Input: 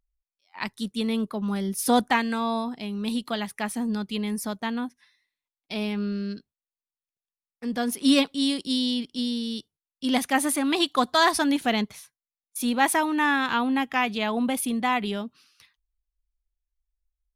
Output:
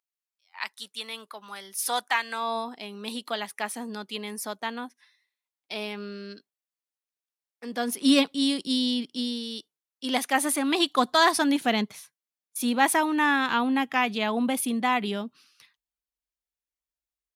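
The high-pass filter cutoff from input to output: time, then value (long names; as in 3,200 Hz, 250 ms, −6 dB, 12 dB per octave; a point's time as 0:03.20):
0:02.17 970 Hz
0:02.58 390 Hz
0:07.65 390 Hz
0:08.22 130 Hz
0:08.92 130 Hz
0:09.47 340 Hz
0:10.34 340 Hz
0:10.99 150 Hz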